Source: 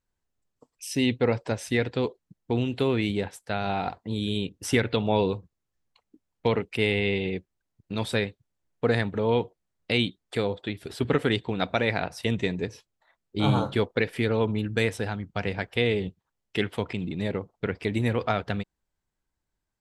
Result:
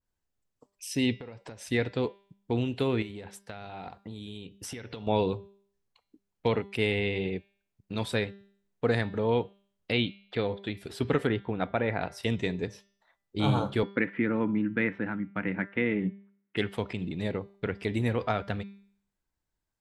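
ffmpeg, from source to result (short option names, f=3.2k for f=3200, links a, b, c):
-filter_complex "[0:a]asettb=1/sr,asplit=3[a][b][c];[a]atrim=end=1.204[d];[b]atrim=start=1.2:end=1.67,asetpts=PTS-STARTPTS,afade=t=in:d=0.004:c=qsin,afade=t=out:st=0.466:d=0.004:c=qsin,acompressor=threshold=-36dB:ratio=16:attack=3.2:release=140:knee=1:detection=peak[e];[c]atrim=start=1.666[f];[d][e]acrossfade=d=0.004:c1=hsin:c2=qsin[g];[g][f]acrossfade=d=0.004:c1=qsin:c2=hsin,asettb=1/sr,asplit=3[h][i][j];[h]atrim=end=3.024[k];[i]atrim=start=3.02:end=5.07,asetpts=PTS-STARTPTS,afade=t=in:d=0.004:c=qsin,afade=t=out:st=2.046:d=0.004:c=qsin,acompressor=threshold=-33dB:ratio=10:attack=3.2:release=140:knee=1:detection=peak[l];[j]atrim=start=5.066[m];[k][l]acrossfade=d=0.004:c1=hsin:c2=qsin[n];[n][m]acrossfade=d=0.004:c1=qsin:c2=hsin,asplit=3[o][p][q];[o]afade=t=out:st=9.91:d=0.02[r];[p]lowpass=f=4.4k:w=0.5412,lowpass=f=4.4k:w=1.3066,afade=t=in:st=9.91:d=0.02,afade=t=out:st=10.61:d=0.02[s];[q]afade=t=in:st=10.61:d=0.02[t];[r][s][t]amix=inputs=3:normalize=0,asettb=1/sr,asplit=3[u][v][w];[u]atrim=end=11.274[x];[v]atrim=start=11.27:end=12.01,asetpts=PTS-STARTPTS,afade=t=in:d=0.004:c=qsin,afade=t=out:st=0.736:d=0.004:c=qsin,lowpass=2k[y];[w]atrim=start=12.006[z];[x][y]acrossfade=d=0.004:c1=hsin:c2=qsin[aa];[aa][z]acrossfade=d=0.004:c1=qsin:c2=hsin,asettb=1/sr,asplit=3[ab][ac][ad];[ab]atrim=end=13.834[ae];[ac]atrim=start=13.83:end=16.57,asetpts=PTS-STARTPTS,afade=t=in:d=0.004:c=qsin,afade=t=out:st=2.736:d=0.004:c=qsin,highpass=180,equalizer=f=190:t=q:w=4:g=10,equalizer=f=300:t=q:w=4:g=10,equalizer=f=430:t=q:w=4:g=-7,equalizer=f=720:t=q:w=4:g=-8,equalizer=f=1.4k:t=q:w=4:g=4,equalizer=f=2k:t=q:w=4:g=5,lowpass=f=2.3k:w=0.5412,lowpass=f=2.3k:w=1.3066[af];[ad]atrim=start=16.566[ag];[ae][af]acrossfade=d=0.004:c1=hsin:c2=qsin[ah];[ah][ag]acrossfade=d=0.004:c1=qsin:c2=hsin,bandreject=f=198.7:t=h:w=4,bandreject=f=397.4:t=h:w=4,bandreject=f=596.1:t=h:w=4,bandreject=f=794.8:t=h:w=4,bandreject=f=993.5:t=h:w=4,bandreject=f=1.1922k:t=h:w=4,bandreject=f=1.3909k:t=h:w=4,bandreject=f=1.5896k:t=h:w=4,bandreject=f=1.7883k:t=h:w=4,bandreject=f=1.987k:t=h:w=4,bandreject=f=2.1857k:t=h:w=4,bandreject=f=2.3844k:t=h:w=4,bandreject=f=2.5831k:t=h:w=4,bandreject=f=2.7818k:t=h:w=4,bandreject=f=2.9805k:t=h:w=4,bandreject=f=3.1792k:t=h:w=4,bandreject=f=3.3779k:t=h:w=4,bandreject=f=3.5766k:t=h:w=4,bandreject=f=3.7753k:t=h:w=4,bandreject=f=3.974k:t=h:w=4,bandreject=f=4.1727k:t=h:w=4,bandreject=f=4.3714k:t=h:w=4,bandreject=f=4.5701k:t=h:w=4,bandreject=f=4.7688k:t=h:w=4,bandreject=f=4.9675k:t=h:w=4,bandreject=f=5.1662k:t=h:w=4,bandreject=f=5.3649k:t=h:w=4,bandreject=f=5.5636k:t=h:w=4,bandreject=f=5.7623k:t=h:w=4,bandreject=f=5.961k:t=h:w=4,adynamicequalizer=threshold=0.0126:dfrequency=2100:dqfactor=0.7:tfrequency=2100:tqfactor=0.7:attack=5:release=100:ratio=0.375:range=2:mode=cutabove:tftype=highshelf,volume=-2.5dB"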